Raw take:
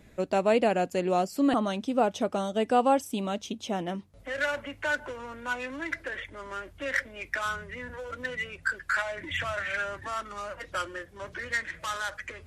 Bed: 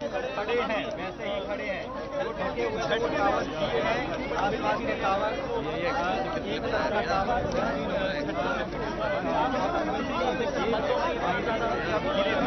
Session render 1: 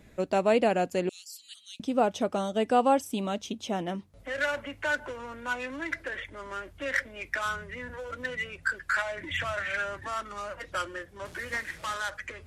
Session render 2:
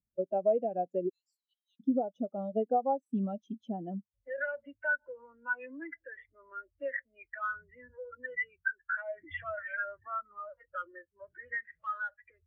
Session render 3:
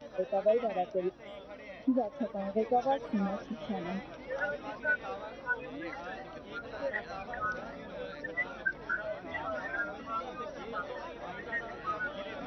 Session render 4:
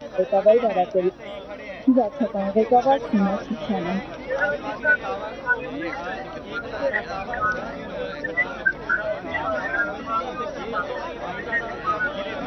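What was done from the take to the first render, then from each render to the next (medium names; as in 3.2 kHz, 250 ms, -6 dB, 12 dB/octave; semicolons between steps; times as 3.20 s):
1.09–1.80 s: inverse Chebyshev high-pass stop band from 1 kHz, stop band 60 dB; 11.25–11.94 s: one-bit delta coder 64 kbps, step -43 dBFS
compression 5:1, threshold -28 dBFS, peak gain reduction 10.5 dB; spectral contrast expander 2.5:1
add bed -15.5 dB
trim +11.5 dB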